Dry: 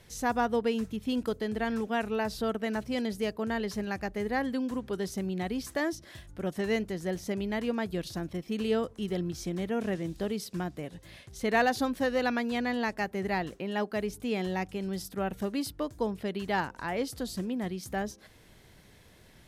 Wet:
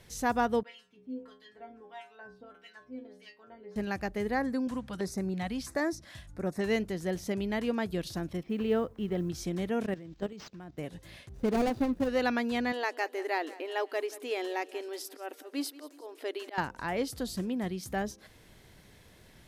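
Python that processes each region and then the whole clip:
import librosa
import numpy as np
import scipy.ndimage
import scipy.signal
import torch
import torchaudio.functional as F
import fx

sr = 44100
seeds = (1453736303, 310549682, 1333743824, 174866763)

y = fx.chain(x, sr, fx.filter_lfo_bandpass(shape='sine', hz=1.6, low_hz=290.0, high_hz=3700.0, q=0.81),
    fx.stiff_resonator(f0_hz=61.0, decay_s=0.72, stiffness=0.008), at=(0.63, 3.76))
y = fx.chain(y, sr, fx.lowpass(hz=12000.0, slope=12),
    fx.filter_lfo_notch(shape='square', hz=1.5, low_hz=390.0, high_hz=3100.0, q=1.6), at=(4.34, 6.61))
y = fx.chain(y, sr, fx.lowpass(hz=2400.0, slope=12),
    fx.quant_companded(bits=8), at=(8.43, 9.29))
y = fx.chain(y, sr, fx.level_steps(step_db=15),
    fx.resample_linear(factor=4), at=(9.86, 10.78))
y = fx.chain(y, sr, fx.median_filter(points=41),
    fx.low_shelf(hz=500.0, db=3.5), at=(11.29, 12.09))
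y = fx.chain(y, sr, fx.auto_swell(attack_ms=180.0),
    fx.brickwall_highpass(low_hz=260.0),
    fx.echo_feedback(ms=181, feedback_pct=46, wet_db=-18.5), at=(12.72, 16.58))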